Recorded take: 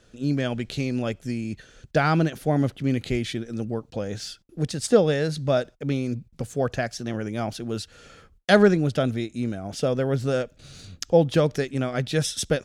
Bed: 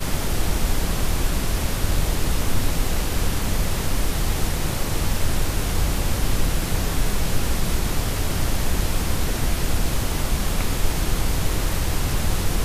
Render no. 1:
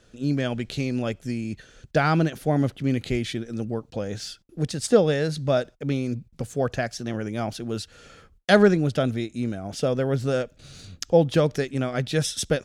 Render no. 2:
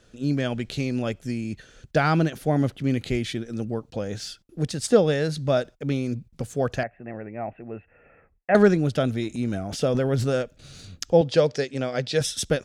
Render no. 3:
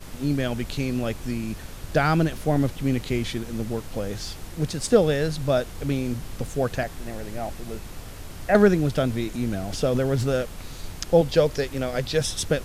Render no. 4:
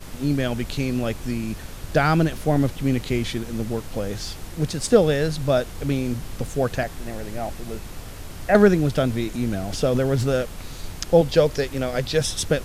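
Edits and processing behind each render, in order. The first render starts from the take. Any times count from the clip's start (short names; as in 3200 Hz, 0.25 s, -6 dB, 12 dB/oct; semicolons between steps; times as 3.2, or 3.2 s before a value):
nothing audible
6.83–8.55 rippled Chebyshev low-pass 2700 Hz, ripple 9 dB; 9.11–10.36 transient shaper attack +1 dB, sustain +8 dB; 11.21–12.21 speaker cabinet 130–8400 Hz, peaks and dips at 190 Hz -9 dB, 320 Hz -5 dB, 510 Hz +5 dB, 1200 Hz -4 dB, 4800 Hz +8 dB
add bed -15.5 dB
gain +2 dB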